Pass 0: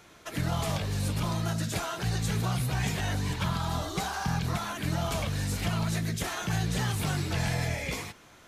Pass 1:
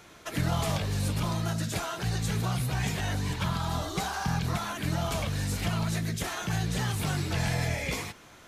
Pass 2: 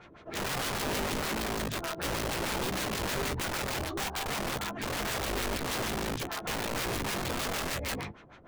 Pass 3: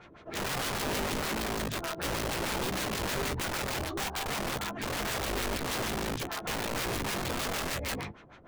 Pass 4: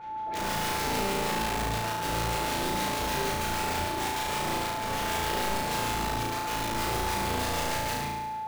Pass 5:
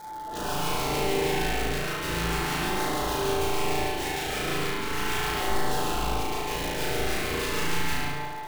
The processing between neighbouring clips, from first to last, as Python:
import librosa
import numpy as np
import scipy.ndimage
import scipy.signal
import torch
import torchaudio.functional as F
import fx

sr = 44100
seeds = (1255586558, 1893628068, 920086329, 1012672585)

y1 = fx.rider(x, sr, range_db=4, speed_s=2.0)
y2 = fx.filter_lfo_lowpass(y1, sr, shape='sine', hz=6.5, low_hz=390.0, high_hz=3700.0, q=0.99)
y2 = (np.mod(10.0 ** (28.0 / 20.0) * y2 + 1.0, 2.0) - 1.0) / 10.0 ** (28.0 / 20.0)
y2 = fx.doubler(y2, sr, ms=15.0, db=-12.0)
y3 = y2
y4 = y3 + 10.0 ** (-39.0 / 20.0) * np.sin(2.0 * np.pi * 870.0 * np.arange(len(y3)) / sr)
y4 = fx.room_flutter(y4, sr, wall_m=6.1, rt60_s=1.1)
y4 = y4 * 10.0 ** (-2.5 / 20.0)
y5 = fx.dmg_crackle(y4, sr, seeds[0], per_s=370.0, level_db=-36.0)
y5 = fx.filter_lfo_notch(y5, sr, shape='saw_down', hz=0.37, low_hz=490.0, high_hz=2800.0, q=1.8)
y5 = fx.rev_spring(y5, sr, rt60_s=1.4, pass_ms=(38, 42), chirp_ms=65, drr_db=-2.5)